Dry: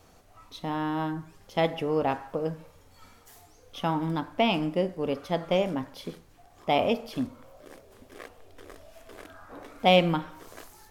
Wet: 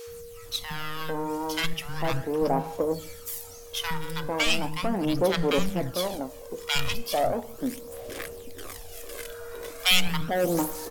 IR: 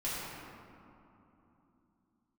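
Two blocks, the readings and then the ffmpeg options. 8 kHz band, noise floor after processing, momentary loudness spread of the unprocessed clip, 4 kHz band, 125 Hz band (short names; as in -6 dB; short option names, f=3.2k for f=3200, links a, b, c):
n/a, -44 dBFS, 22 LU, +6.5 dB, +0.5 dB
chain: -filter_complex "[0:a]asplit=2[a][b];[b]acompressor=threshold=-39dB:ratio=6,volume=-3dB[c];[a][c]amix=inputs=2:normalize=0,crystalizer=i=3:c=0,aeval=exprs='0.708*(cos(1*acos(clip(val(0)/0.708,-1,1)))-cos(1*PI/2))+0.0447*(cos(3*acos(clip(val(0)/0.708,-1,1)))-cos(3*PI/2))+0.0794*(cos(8*acos(clip(val(0)/0.708,-1,1)))-cos(8*PI/2))':c=same,acrossover=split=200|1100[d][e][f];[d]adelay=70[g];[e]adelay=450[h];[g][h][f]amix=inputs=3:normalize=0,acrossover=split=2600[i][j];[i]asoftclip=type=tanh:threshold=-20.5dB[k];[k][j]amix=inputs=2:normalize=0,aeval=exprs='val(0)+0.00501*sin(2*PI*470*n/s)':c=same,aphaser=in_gain=1:out_gain=1:delay=2.1:decay=0.48:speed=0.37:type=sinusoidal,volume=1.5dB"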